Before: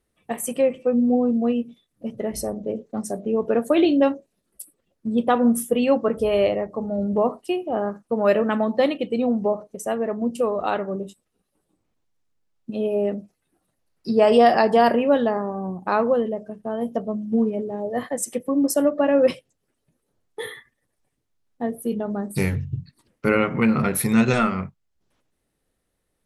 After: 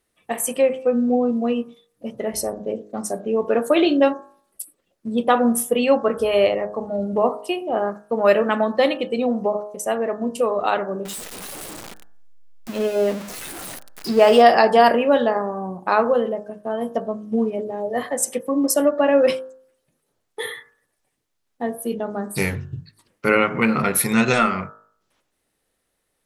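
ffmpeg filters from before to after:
ffmpeg -i in.wav -filter_complex "[0:a]asettb=1/sr,asplit=3[link_01][link_02][link_03];[link_01]atrim=end=11.054[link_04];[link_02]atrim=start=11.05:end=14.42,asetpts=PTS-STARTPTS,afade=type=in:duration=0.004:curve=qsin,afade=type=out:start_time=3.366:duration=0.004:curve=qsin,aeval=exprs='val(0)+0.5*0.0282*sgn(val(0))':channel_layout=same[link_05];[link_03]atrim=start=14.416[link_06];[link_04][link_05]acrossfade=duration=0.004:curve1=hsin:curve2=qsin[link_07];[link_07][link_06]acrossfade=duration=0.004:curve1=qsin:curve2=hsin,lowshelf=frequency=320:gain=-10,bandreject=frequency=52.15:width_type=h:width=4,bandreject=frequency=104.3:width_type=h:width=4,bandreject=frequency=156.45:width_type=h:width=4,bandreject=frequency=208.6:width_type=h:width=4,bandreject=frequency=260.75:width_type=h:width=4,bandreject=frequency=312.9:width_type=h:width=4,bandreject=frequency=365.05:width_type=h:width=4,bandreject=frequency=417.2:width_type=h:width=4,bandreject=frequency=469.35:width_type=h:width=4,bandreject=frequency=521.5:width_type=h:width=4,bandreject=frequency=573.65:width_type=h:width=4,bandreject=frequency=625.8:width_type=h:width=4,bandreject=frequency=677.95:width_type=h:width=4,bandreject=frequency=730.1:width_type=h:width=4,bandreject=frequency=782.25:width_type=h:width=4,bandreject=frequency=834.4:width_type=h:width=4,bandreject=frequency=886.55:width_type=h:width=4,bandreject=frequency=938.7:width_type=h:width=4,bandreject=frequency=990.85:width_type=h:width=4,bandreject=frequency=1043:width_type=h:width=4,bandreject=frequency=1095.15:width_type=h:width=4,bandreject=frequency=1147.3:width_type=h:width=4,bandreject=frequency=1199.45:width_type=h:width=4,bandreject=frequency=1251.6:width_type=h:width=4,bandreject=frequency=1303.75:width_type=h:width=4,bandreject=frequency=1355.9:width_type=h:width=4,bandreject=frequency=1408.05:width_type=h:width=4,bandreject=frequency=1460.2:width_type=h:width=4,bandreject=frequency=1512.35:width_type=h:width=4,bandreject=frequency=1564.5:width_type=h:width=4,bandreject=frequency=1616.65:width_type=h:width=4,bandreject=frequency=1668.8:width_type=h:width=4,bandreject=frequency=1720.95:width_type=h:width=4,bandreject=frequency=1773.1:width_type=h:width=4,volume=5.5dB" out.wav

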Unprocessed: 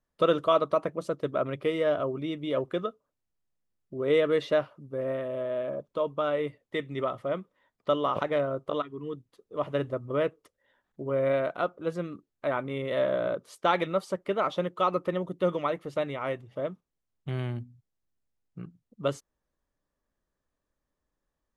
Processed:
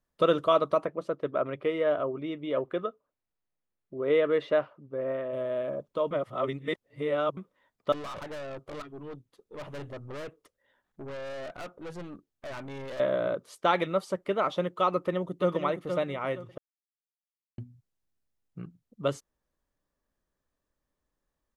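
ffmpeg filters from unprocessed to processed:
ffmpeg -i in.wav -filter_complex "[0:a]asettb=1/sr,asplit=3[link_01][link_02][link_03];[link_01]atrim=end=0.854[link_04];[link_02]atrim=start=0.85:end=5.33,asetpts=PTS-STARTPTS,afade=type=in:duration=0.004:curve=qsin,afade=type=out:start_time=4.476:duration=0.004:curve=qsin,bass=frequency=250:gain=-6,treble=frequency=4000:gain=-14[link_05];[link_03]atrim=start=5.326[link_06];[link_04][link_05]acrossfade=duration=0.004:curve1=hsin:curve2=qsin[link_07];[link_07][link_06]acrossfade=duration=0.004:curve1=qsin:curve2=hsin,asettb=1/sr,asplit=3[link_08][link_09][link_10];[link_08]atrim=end=7.924[link_11];[link_09]atrim=start=7.92:end=13,asetpts=PTS-STARTPTS,afade=type=in:duration=0.004:curve=qsin,afade=type=out:start_time=5.076:duration=0.004:curve=qsin,aeval=exprs='(tanh(70.8*val(0)+0.35)-tanh(0.35))/70.8':channel_layout=same[link_12];[link_10]atrim=start=12.996[link_13];[link_11][link_12]acrossfade=duration=0.004:curve1=hsin:curve2=qsin[link_14];[link_14][link_13]acrossfade=duration=0.004:curve1=qsin:curve2=hsin,asplit=2[link_15][link_16];[link_16]afade=type=in:start_time=14.93:duration=0.01,afade=type=out:start_time=15.53:duration=0.01,aecho=0:1:470|940|1410|1880:0.446684|0.134005|0.0402015|0.0120605[link_17];[link_15][link_17]amix=inputs=2:normalize=0,asplit=5[link_18][link_19][link_20][link_21][link_22];[link_18]atrim=end=6.112[link_23];[link_19]atrim=start=6.108:end=7.372,asetpts=PTS-STARTPTS,areverse[link_24];[link_20]atrim=start=7.368:end=16.58,asetpts=PTS-STARTPTS,afade=type=out:start_time=9.208:duration=0.004:curve=hsin[link_25];[link_21]atrim=start=16.58:end=17.58,asetpts=PTS-STARTPTS,volume=0[link_26];[link_22]atrim=start=17.58,asetpts=PTS-STARTPTS,afade=type=in:duration=0.004:curve=hsin[link_27];[link_23][link_24]acrossfade=duration=0.004:curve1=hsin:curve2=hsin[link_28];[link_25][link_26][link_27]concat=n=3:v=0:a=1[link_29];[link_28][link_29]acrossfade=duration=0.004:curve1=hsin:curve2=hsin" out.wav

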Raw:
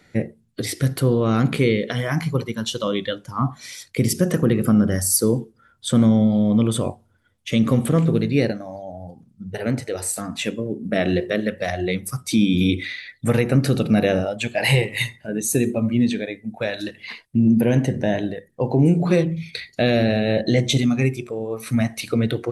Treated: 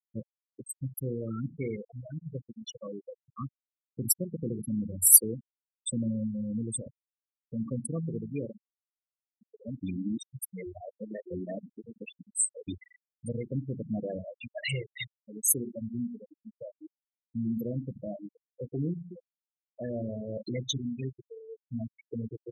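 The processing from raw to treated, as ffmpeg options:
ffmpeg -i in.wav -filter_complex "[0:a]asplit=5[link_01][link_02][link_03][link_04][link_05];[link_01]atrim=end=9.832[link_06];[link_02]atrim=start=9.828:end=12.682,asetpts=PTS-STARTPTS,areverse[link_07];[link_03]atrim=start=12.678:end=19.16,asetpts=PTS-STARTPTS,afade=type=out:start_time=6.202:duration=0.28:silence=0.237137[link_08];[link_04]atrim=start=19.16:end=19.62,asetpts=PTS-STARTPTS,volume=-12.5dB[link_09];[link_05]atrim=start=19.62,asetpts=PTS-STARTPTS,afade=type=in:duration=0.28:silence=0.237137[link_10];[link_06][link_07]acrossfade=duration=0.004:curve1=hsin:curve2=hsin[link_11];[link_08][link_09][link_10]concat=n=3:v=0:a=1[link_12];[link_11][link_12]acrossfade=duration=0.004:curve1=hsin:curve2=hsin,aemphasis=mode=production:type=50kf,afftfilt=real='re*gte(hypot(re,im),0.355)':imag='im*gte(hypot(re,im),0.355)':win_size=1024:overlap=0.75,highshelf=frequency=4100:gain=10,volume=-15.5dB" out.wav

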